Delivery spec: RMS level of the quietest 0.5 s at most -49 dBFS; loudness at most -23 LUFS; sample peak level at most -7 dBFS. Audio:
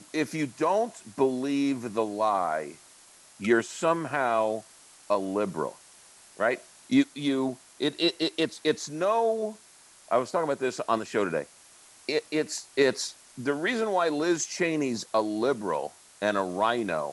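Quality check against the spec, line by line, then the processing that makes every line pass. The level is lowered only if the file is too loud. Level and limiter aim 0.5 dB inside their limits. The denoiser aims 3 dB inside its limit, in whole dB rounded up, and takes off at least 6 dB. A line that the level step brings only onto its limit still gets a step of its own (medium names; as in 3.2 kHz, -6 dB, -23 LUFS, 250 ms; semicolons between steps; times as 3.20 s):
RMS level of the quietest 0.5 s -55 dBFS: pass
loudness -28.0 LUFS: pass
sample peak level -9.0 dBFS: pass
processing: none needed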